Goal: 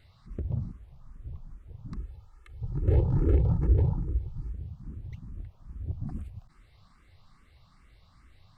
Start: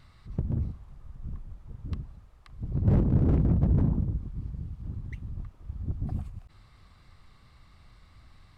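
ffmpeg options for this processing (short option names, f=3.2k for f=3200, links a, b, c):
-filter_complex "[0:a]asettb=1/sr,asplit=3[a][b][c];[a]atrim=end=1.964[d];[b]atrim=start=1.96:end=4.53,asetpts=PTS-STARTPTS,afade=t=in:d=0.004:c=qsin,afade=t=out:st=2.566:d=0.004:c=qsin,aecho=1:1:2.3:0.86,atrim=end_sample=113337[e];[c]atrim=start=4.526[f];[d][e]acrossfade=d=0.004:c1=hsin:c2=qsin[g];[g][f]acrossfade=d=0.004:c1=qsin:c2=hsin,asplit=2[h][i];[i]afreqshift=2.4[j];[h][j]amix=inputs=2:normalize=1"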